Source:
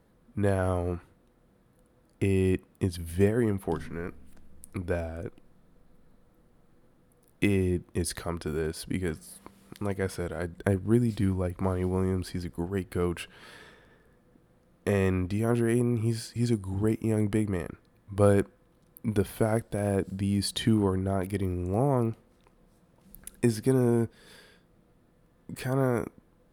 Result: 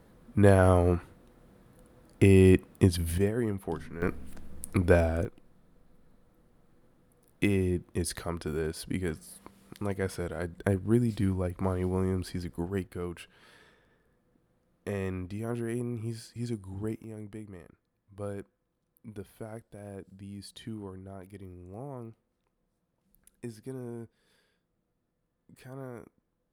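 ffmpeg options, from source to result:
-af "asetnsamples=n=441:p=0,asendcmd='3.18 volume volume -4dB;4.02 volume volume 8dB;5.25 volume volume -1.5dB;12.87 volume volume -8dB;17.04 volume volume -16dB',volume=6dB"

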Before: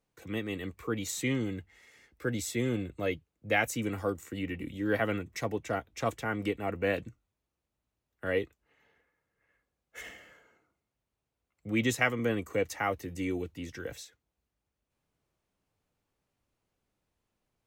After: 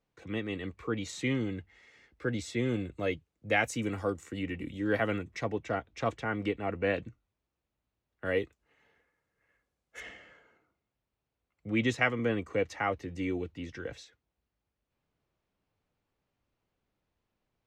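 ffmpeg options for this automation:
-af "asetnsamples=n=441:p=0,asendcmd='2.69 lowpass f 8100;5.3 lowpass f 4600;8.25 lowpass f 9400;10 lowpass f 4500',lowpass=4.9k"

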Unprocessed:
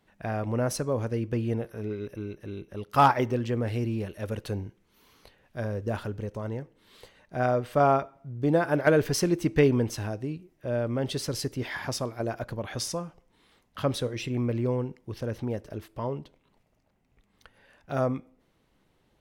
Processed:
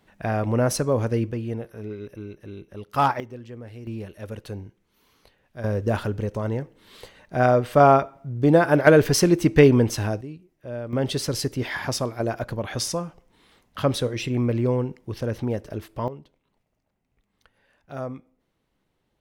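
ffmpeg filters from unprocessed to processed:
-af "asetnsamples=n=441:p=0,asendcmd='1.31 volume volume -1dB;3.2 volume volume -11dB;3.87 volume volume -2.5dB;5.64 volume volume 7dB;10.21 volume volume -4dB;10.93 volume volume 5dB;16.08 volume volume -5.5dB',volume=6dB"

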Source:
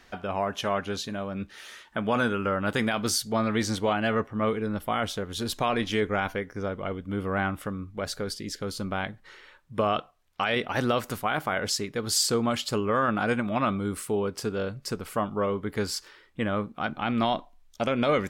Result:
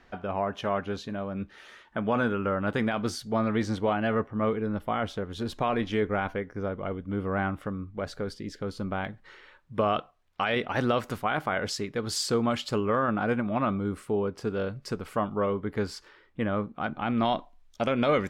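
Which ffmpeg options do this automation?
-af "asetnsamples=n=441:p=0,asendcmd='9.05 lowpass f 3200;12.95 lowpass f 1400;14.47 lowpass f 3000;15.53 lowpass f 1800;17.25 lowpass f 4500',lowpass=f=1.6k:p=1"

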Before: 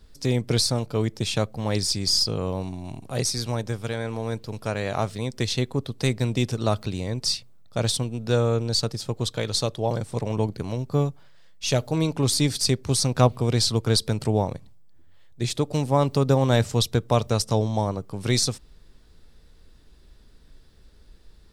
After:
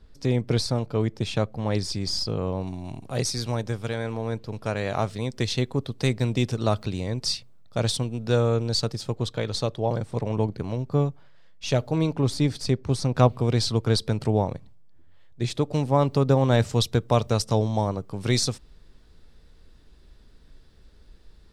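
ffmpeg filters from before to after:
-af "asetnsamples=n=441:p=0,asendcmd='2.67 lowpass f 6100;4.13 lowpass f 3000;4.66 lowpass f 6000;9.15 lowpass f 2700;12.16 lowpass f 1600;13.14 lowpass f 3400;16.59 lowpass f 6300',lowpass=f=2.4k:p=1"

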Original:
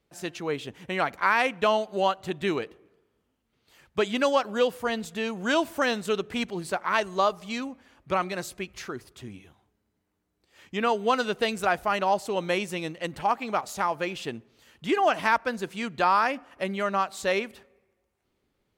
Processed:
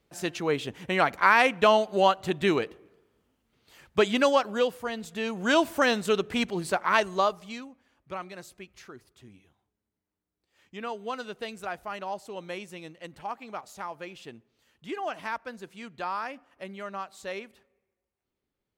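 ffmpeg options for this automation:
-af "volume=10.5dB,afade=t=out:st=4:d=0.93:silence=0.375837,afade=t=in:st=4.93:d=0.65:silence=0.421697,afade=t=out:st=6.96:d=0.71:silence=0.237137"

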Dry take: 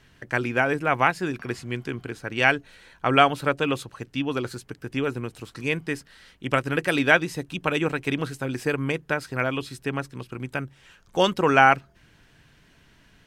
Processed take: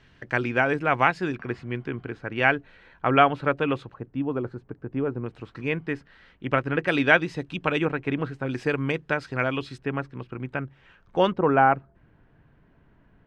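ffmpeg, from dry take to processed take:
-af "asetnsamples=n=441:p=0,asendcmd='1.35 lowpass f 2300;3.94 lowpass f 1000;5.26 lowpass f 2300;6.87 lowpass f 3800;7.85 lowpass f 2000;8.46 lowpass f 4300;9.78 lowpass f 2200;11.32 lowpass f 1100',lowpass=4.4k"

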